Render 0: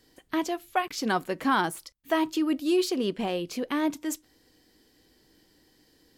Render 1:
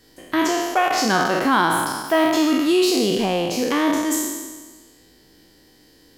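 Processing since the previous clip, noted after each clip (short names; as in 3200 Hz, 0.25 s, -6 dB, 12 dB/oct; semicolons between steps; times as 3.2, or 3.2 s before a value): spectral trails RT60 1.41 s; in parallel at +2.5 dB: limiter -17 dBFS, peak gain reduction 7 dB; on the sum: gain -1 dB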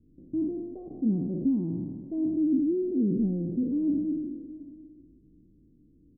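inverse Chebyshev low-pass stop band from 1600 Hz, stop band 80 dB; echo 0.724 s -19.5 dB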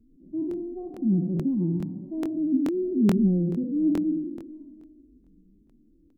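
median-filter separation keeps harmonic; flange 0.38 Hz, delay 4.5 ms, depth 1.6 ms, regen +33%; crackling interface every 0.43 s, samples 1024, repeat, from 0.49; gain +7 dB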